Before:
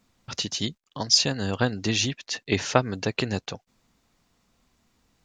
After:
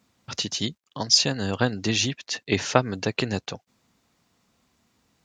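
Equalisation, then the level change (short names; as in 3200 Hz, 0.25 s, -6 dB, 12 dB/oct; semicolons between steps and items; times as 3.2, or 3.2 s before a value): HPF 78 Hz; +1.0 dB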